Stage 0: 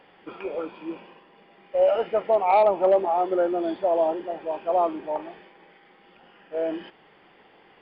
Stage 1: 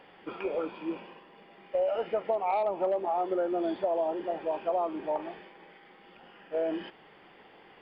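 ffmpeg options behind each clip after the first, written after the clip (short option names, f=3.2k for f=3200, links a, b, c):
-af "acompressor=threshold=-26dB:ratio=6"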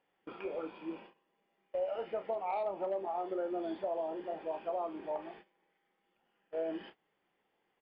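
-filter_complex "[0:a]asplit=2[a][b];[b]adelay=31,volume=-10.5dB[c];[a][c]amix=inputs=2:normalize=0,agate=range=-17dB:threshold=-45dB:ratio=16:detection=peak,volume=-7.5dB"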